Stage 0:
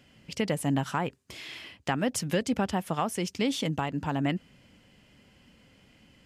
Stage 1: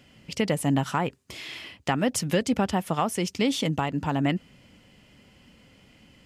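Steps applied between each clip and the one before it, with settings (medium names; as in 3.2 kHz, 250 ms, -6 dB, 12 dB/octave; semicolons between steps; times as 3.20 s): band-stop 1.6 kHz, Q 22; trim +3.5 dB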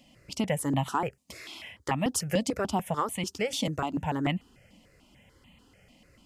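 stepped phaser 6.8 Hz 400–1500 Hz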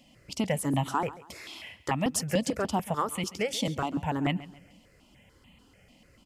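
feedback delay 137 ms, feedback 36%, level -17.5 dB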